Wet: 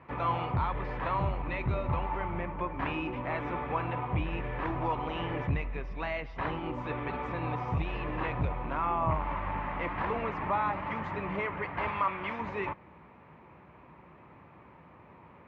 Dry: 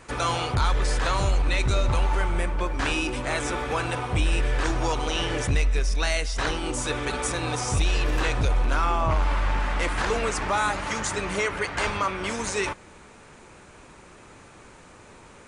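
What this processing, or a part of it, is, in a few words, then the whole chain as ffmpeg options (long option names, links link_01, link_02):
bass cabinet: -filter_complex "[0:a]highpass=frequency=60:width=0.5412,highpass=frequency=60:width=1.3066,equalizer=frequency=160:width_type=q:width=4:gain=6,equalizer=frequency=440:width_type=q:width=4:gain=-4,equalizer=frequency=1000:width_type=q:width=4:gain=5,equalizer=frequency=1500:width_type=q:width=4:gain=-8,lowpass=frequency=2300:width=0.5412,lowpass=frequency=2300:width=1.3066,asettb=1/sr,asplit=3[link_01][link_02][link_03];[link_01]atrim=end=11.884[link_04];[link_02]atrim=start=11.88:end=12.41,asetpts=PTS-STARTPTS,afade=type=in:duration=0.004:curve=qsin,afade=type=out:start_time=0.526:duration=0.004:curve=qsin,tiltshelf=frequency=800:gain=-5[link_05];[link_03]atrim=start=12.406[link_06];[link_04][link_05]acrossfade=duration=0.004:curve1=hsin:curve2=qsin[link_07];[link_07][link_06]acrossfade=duration=0.004:curve1=qsin:curve2=hsin,volume=-5dB"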